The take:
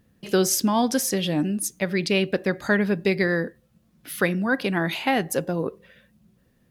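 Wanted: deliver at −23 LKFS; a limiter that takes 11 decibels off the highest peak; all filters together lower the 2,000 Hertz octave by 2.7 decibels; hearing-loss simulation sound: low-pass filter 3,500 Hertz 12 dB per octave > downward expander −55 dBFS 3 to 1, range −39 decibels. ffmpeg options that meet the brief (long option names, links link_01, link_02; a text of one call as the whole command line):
ffmpeg -i in.wav -af "equalizer=frequency=2000:width_type=o:gain=-3,alimiter=limit=-20dB:level=0:latency=1,lowpass=3500,agate=range=-39dB:threshold=-55dB:ratio=3,volume=7dB" out.wav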